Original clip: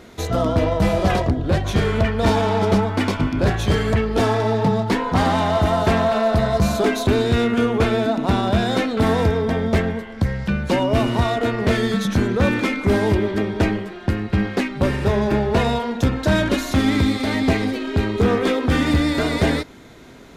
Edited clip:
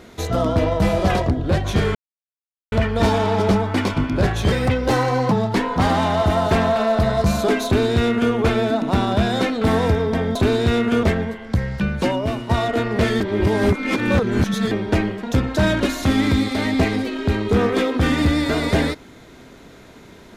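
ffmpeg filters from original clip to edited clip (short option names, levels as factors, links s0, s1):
-filter_complex "[0:a]asplit=10[s0][s1][s2][s3][s4][s5][s6][s7][s8][s9];[s0]atrim=end=1.95,asetpts=PTS-STARTPTS,afade=t=out:st=1.946:d=0.004:c=hsin,apad=pad_dur=0.77[s10];[s1]atrim=start=1.95:end=3.754,asetpts=PTS-STARTPTS,afade=t=in:d=0.004:c=hsin[s11];[s2]atrim=start=3.75:end=4.67,asetpts=PTS-STARTPTS,asetrate=51156,aresample=44100[s12];[s3]atrim=start=4.666:end=9.712[s13];[s4]atrim=start=7.008:end=7.692[s14];[s5]atrim=start=9.708:end=11.17,asetpts=PTS-STARTPTS,afade=t=out:st=0.952:d=0.51:silence=0.266073[s15];[s6]atrim=start=11.17:end=11.882,asetpts=PTS-STARTPTS,afade=t=in:d=0.004:c=hsin:silence=0.266073[s16];[s7]atrim=start=11.878:end=13.392,asetpts=PTS-STARTPTS,areverse[s17];[s8]atrim=start=13.388:end=13.912[s18];[s9]atrim=start=15.918[s19];[s10][s11]concat=n=2:v=0:a=1[s20];[s20][s12]acrossfade=d=0.004:c1=hsin:c2=hsin[s21];[s21][s13]acrossfade=d=0.004:c1=hsin:c2=hsin[s22];[s22][s14]acrossfade=d=0.004:c1=hsin:c2=hsin[s23];[s15][s16]concat=n=2:v=0:a=1[s24];[s23][s24]acrossfade=d=0.004:c1=hsin:c2=hsin[s25];[s25][s17]acrossfade=d=0.004:c1=hsin:c2=hsin[s26];[s26][s18]acrossfade=d=0.004:c1=hsin:c2=hsin[s27];[s27][s19]acrossfade=d=0.004:c1=hsin:c2=hsin"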